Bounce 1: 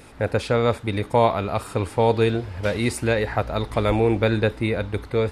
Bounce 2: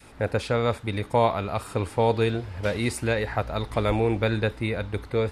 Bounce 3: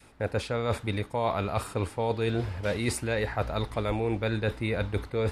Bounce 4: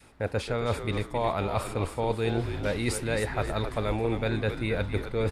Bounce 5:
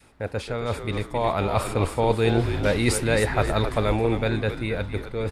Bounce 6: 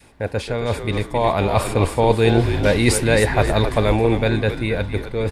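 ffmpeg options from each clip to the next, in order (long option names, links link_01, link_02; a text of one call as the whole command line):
ffmpeg -i in.wav -af "adynamicequalizer=threshold=0.0316:dfrequency=350:dqfactor=0.73:tfrequency=350:tqfactor=0.73:attack=5:release=100:ratio=0.375:range=2:mode=cutabove:tftype=bell,volume=-2.5dB" out.wav
ffmpeg -i in.wav -af "agate=range=-9dB:threshold=-40dB:ratio=16:detection=peak,areverse,acompressor=threshold=-30dB:ratio=6,areverse,volume=5dB" out.wav
ffmpeg -i in.wav -filter_complex "[0:a]asplit=5[link_01][link_02][link_03][link_04][link_05];[link_02]adelay=268,afreqshift=-81,volume=-8.5dB[link_06];[link_03]adelay=536,afreqshift=-162,volume=-17.1dB[link_07];[link_04]adelay=804,afreqshift=-243,volume=-25.8dB[link_08];[link_05]adelay=1072,afreqshift=-324,volume=-34.4dB[link_09];[link_01][link_06][link_07][link_08][link_09]amix=inputs=5:normalize=0" out.wav
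ffmpeg -i in.wav -af "dynaudnorm=framelen=200:gausssize=13:maxgain=7dB" out.wav
ffmpeg -i in.wav -af "bandreject=frequency=1300:width=7.6,volume=5.5dB" out.wav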